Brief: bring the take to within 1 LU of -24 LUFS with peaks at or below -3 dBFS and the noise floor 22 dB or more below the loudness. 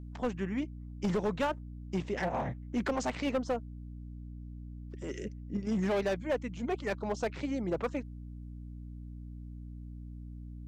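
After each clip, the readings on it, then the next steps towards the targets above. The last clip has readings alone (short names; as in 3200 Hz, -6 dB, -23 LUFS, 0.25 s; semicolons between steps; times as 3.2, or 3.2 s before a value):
clipped 1.4%; flat tops at -25.5 dBFS; hum 60 Hz; harmonics up to 300 Hz; hum level -42 dBFS; loudness -34.5 LUFS; peak -25.5 dBFS; loudness target -24.0 LUFS
-> clip repair -25.5 dBFS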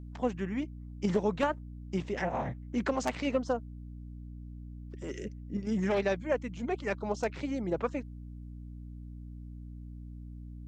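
clipped 0.0%; hum 60 Hz; harmonics up to 300 Hz; hum level -42 dBFS
-> de-hum 60 Hz, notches 5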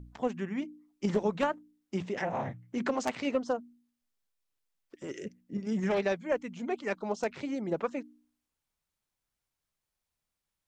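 hum none; loudness -33.5 LUFS; peak -16.0 dBFS; loudness target -24.0 LUFS
-> gain +9.5 dB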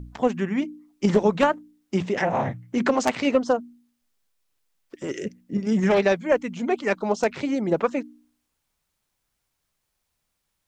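loudness -24.0 LUFS; peak -6.5 dBFS; noise floor -78 dBFS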